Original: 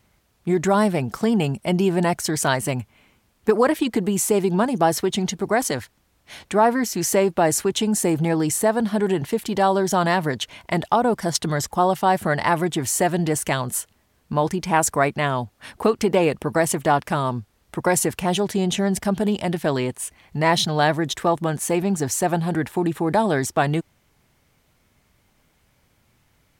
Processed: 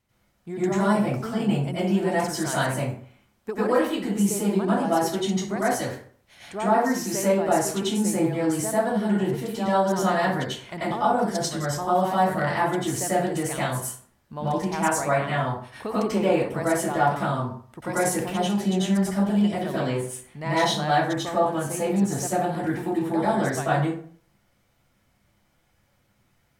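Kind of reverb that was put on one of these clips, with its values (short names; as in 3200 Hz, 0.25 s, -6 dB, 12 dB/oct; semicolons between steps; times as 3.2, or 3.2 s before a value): plate-style reverb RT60 0.51 s, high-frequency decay 0.6×, pre-delay 80 ms, DRR -10 dB; gain -14 dB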